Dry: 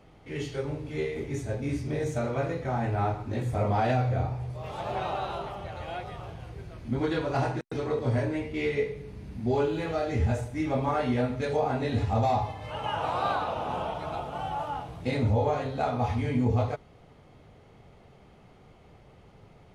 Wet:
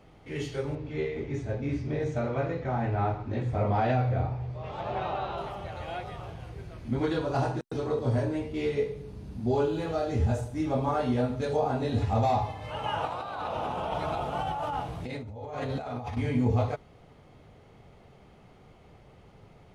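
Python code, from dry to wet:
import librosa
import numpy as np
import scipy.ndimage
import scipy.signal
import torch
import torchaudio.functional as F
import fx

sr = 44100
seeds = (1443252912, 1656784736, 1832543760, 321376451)

y = fx.air_absorb(x, sr, metres=130.0, at=(0.75, 5.38))
y = fx.peak_eq(y, sr, hz=2100.0, db=-8.0, octaves=0.67, at=(7.12, 12.02))
y = fx.over_compress(y, sr, threshold_db=-34.0, ratio=-1.0, at=(13.05, 16.17))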